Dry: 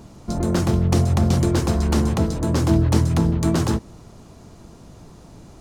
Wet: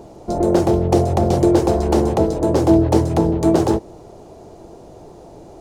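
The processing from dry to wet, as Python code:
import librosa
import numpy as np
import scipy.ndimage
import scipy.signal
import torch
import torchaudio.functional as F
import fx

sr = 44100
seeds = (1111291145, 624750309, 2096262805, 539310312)

y = fx.band_shelf(x, sr, hz=530.0, db=12.5, octaves=1.7)
y = y * librosa.db_to_amplitude(-2.0)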